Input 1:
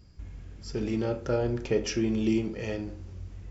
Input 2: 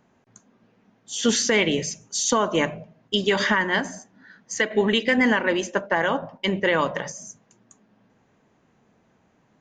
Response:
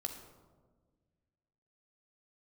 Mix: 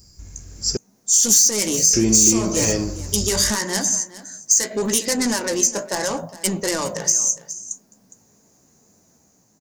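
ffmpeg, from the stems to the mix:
-filter_complex "[0:a]volume=1.5dB,asplit=3[link_01][link_02][link_03];[link_01]atrim=end=0.77,asetpts=PTS-STARTPTS,afade=type=out:start_time=0.766:duration=0.004:curve=hsin[link_04];[link_02]atrim=start=0.77:end=1.93,asetpts=PTS-STARTPTS,volume=0[link_05];[link_03]atrim=start=1.93,asetpts=PTS-STARTPTS,afade=type=in:duration=0.004:curve=hsin[link_06];[link_04][link_05][link_06]concat=n=3:v=0:a=1[link_07];[1:a]flanger=delay=9.6:depth=9.8:regen=40:speed=0.78:shape=triangular,asoftclip=type=tanh:threshold=-23.5dB,equalizer=frequency=1700:width_type=o:width=2.1:gain=-6,volume=-3.5dB,asplit=2[link_08][link_09];[link_09]volume=-17.5dB,aecho=0:1:411:1[link_10];[link_07][link_08][link_10]amix=inputs=3:normalize=0,dynaudnorm=framelen=230:gausssize=7:maxgain=10.5dB,aexciter=amount=7.2:drive=8.9:freq=4900,acompressor=threshold=-13dB:ratio=3"

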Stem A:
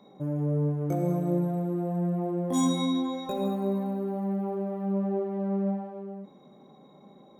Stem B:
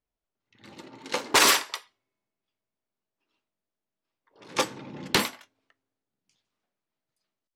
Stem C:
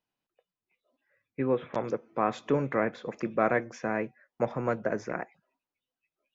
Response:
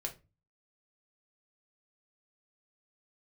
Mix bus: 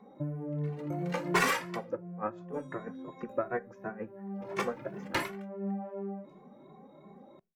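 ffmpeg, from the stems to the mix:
-filter_complex "[0:a]acompressor=threshold=-32dB:ratio=6,volume=2dB,asplit=2[link_01][link_02];[link_02]volume=-21dB[link_03];[1:a]acrusher=bits=6:mode=log:mix=0:aa=0.000001,volume=-7dB,asplit=2[link_04][link_05];[link_05]volume=-5.5dB[link_06];[2:a]equalizer=frequency=2200:width_type=o:width=0.43:gain=-9.5,aeval=exprs='val(0)*pow(10,-20*(0.5-0.5*cos(2*PI*6.2*n/s))/20)':channel_layout=same,volume=-4dB,asplit=3[link_07][link_08][link_09];[link_08]volume=-7.5dB[link_10];[link_09]apad=whole_len=325932[link_11];[link_01][link_11]sidechaincompress=threshold=-49dB:ratio=8:attack=10:release=401[link_12];[3:a]atrim=start_sample=2205[link_13];[link_03][link_06][link_10]amix=inputs=3:normalize=0[link_14];[link_14][link_13]afir=irnorm=-1:irlink=0[link_15];[link_12][link_04][link_07][link_15]amix=inputs=4:normalize=0,highshelf=frequency=2800:width_type=q:width=1.5:gain=-8,asplit=2[link_16][link_17];[link_17]adelay=2.2,afreqshift=2.8[link_18];[link_16][link_18]amix=inputs=2:normalize=1"

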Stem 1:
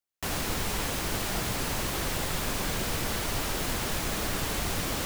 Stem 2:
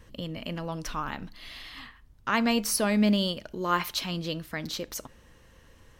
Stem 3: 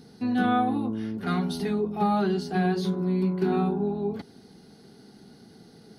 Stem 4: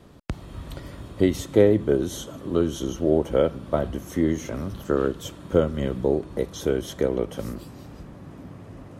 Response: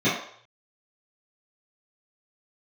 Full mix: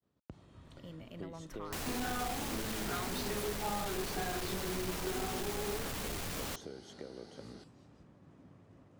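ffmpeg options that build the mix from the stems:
-filter_complex "[0:a]adelay=1500,volume=-0.5dB[link_01];[1:a]equalizer=frequency=4700:width=0.62:gain=-8.5,asoftclip=type=hard:threshold=-27dB,adelay=650,volume=-12.5dB[link_02];[2:a]highpass=380,flanger=delay=19.5:depth=7.2:speed=1.9,adelay=1650,volume=2.5dB[link_03];[3:a]highpass=75,agate=range=-33dB:threshold=-41dB:ratio=3:detection=peak,acompressor=threshold=-26dB:ratio=6,volume=-16.5dB[link_04];[link_01][link_02]amix=inputs=2:normalize=0,asoftclip=type=tanh:threshold=-32.5dB,acompressor=threshold=-38dB:ratio=6,volume=0dB[link_05];[link_03][link_04]amix=inputs=2:normalize=0,lowpass=frequency=8900:width=0.5412,lowpass=frequency=8900:width=1.3066,acompressor=threshold=-37dB:ratio=6,volume=0dB[link_06];[link_05][link_06]amix=inputs=2:normalize=0"

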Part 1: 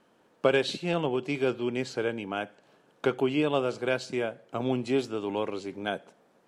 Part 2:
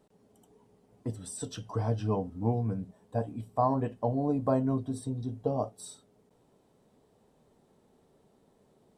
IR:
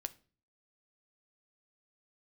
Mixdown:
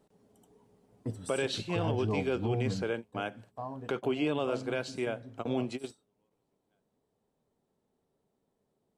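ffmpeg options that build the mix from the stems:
-filter_complex "[0:a]adelay=850,volume=-3dB[link_01];[1:a]volume=-4dB,afade=type=out:start_time=2.82:duration=0.36:silence=0.251189,asplit=3[link_02][link_03][link_04];[link_03]volume=-6.5dB[link_05];[link_04]apad=whole_len=322996[link_06];[link_01][link_06]sidechaingate=range=-47dB:threshold=-59dB:ratio=16:detection=peak[link_07];[2:a]atrim=start_sample=2205[link_08];[link_05][link_08]afir=irnorm=-1:irlink=0[link_09];[link_07][link_02][link_09]amix=inputs=3:normalize=0,alimiter=limit=-21dB:level=0:latency=1:release=27"

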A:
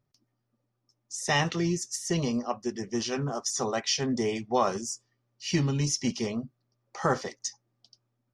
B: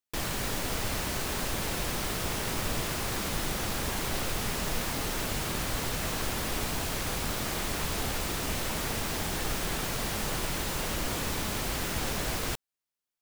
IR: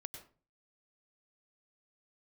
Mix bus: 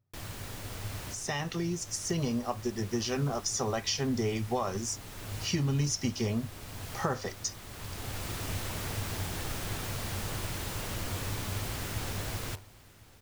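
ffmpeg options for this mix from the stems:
-filter_complex "[0:a]acompressor=threshold=-28dB:ratio=6,volume=-5dB,asplit=2[link_01][link_02];[1:a]bandreject=frequency=75.12:width_type=h:width=4,bandreject=frequency=150.24:width_type=h:width=4,bandreject=frequency=225.36:width_type=h:width=4,bandreject=frequency=300.48:width_type=h:width=4,bandreject=frequency=375.6:width_type=h:width=4,bandreject=frequency=450.72:width_type=h:width=4,bandreject=frequency=525.84:width_type=h:width=4,bandreject=frequency=600.96:width_type=h:width=4,bandreject=frequency=676.08:width_type=h:width=4,bandreject=frequency=751.2:width_type=h:width=4,bandreject=frequency=826.32:width_type=h:width=4,bandreject=frequency=901.44:width_type=h:width=4,bandreject=frequency=976.56:width_type=h:width=4,bandreject=frequency=1051.68:width_type=h:width=4,acrusher=bits=8:dc=4:mix=0:aa=0.000001,volume=-11dB,asplit=2[link_03][link_04];[link_04]volume=-17.5dB[link_05];[link_02]apad=whole_len=582915[link_06];[link_03][link_06]sidechaincompress=threshold=-47dB:ratio=8:attack=30:release=920[link_07];[link_05]aecho=0:1:1052:1[link_08];[link_01][link_07][link_08]amix=inputs=3:normalize=0,equalizer=frequency=100:width_type=o:width=0.41:gain=15,dynaudnorm=framelen=100:gausssize=31:maxgain=5.5dB"

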